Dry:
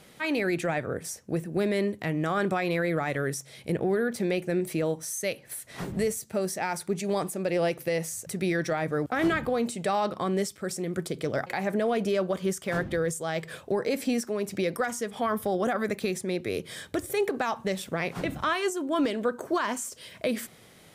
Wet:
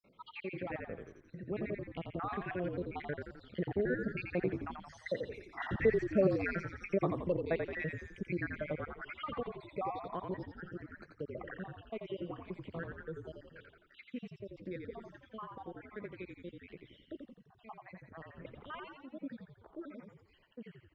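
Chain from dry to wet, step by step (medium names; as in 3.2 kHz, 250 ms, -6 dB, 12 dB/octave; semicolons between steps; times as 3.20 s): random holes in the spectrogram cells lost 72%; Doppler pass-by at 5.88 s, 12 m/s, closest 11 m; low-pass 3.1 kHz 24 dB/octave; in parallel at +1 dB: compression, threshold -46 dBFS, peak gain reduction 20.5 dB; on the sum: frequency-shifting echo 86 ms, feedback 54%, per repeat -45 Hz, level -5 dB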